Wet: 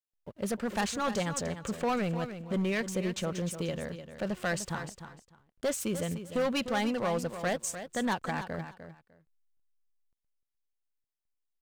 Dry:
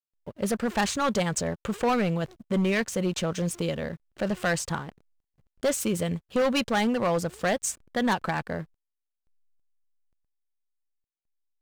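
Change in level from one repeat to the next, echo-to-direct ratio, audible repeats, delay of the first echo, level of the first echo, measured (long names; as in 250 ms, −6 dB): −15.0 dB, −10.5 dB, 2, 301 ms, −10.5 dB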